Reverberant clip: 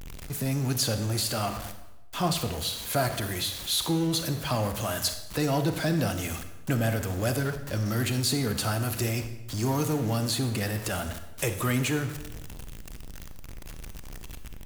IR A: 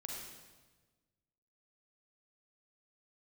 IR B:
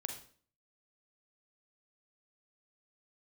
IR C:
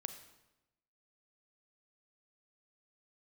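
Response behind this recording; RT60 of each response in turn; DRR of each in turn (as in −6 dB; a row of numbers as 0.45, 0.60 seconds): C; 1.3, 0.45, 0.95 seconds; −1.5, 3.5, 8.5 decibels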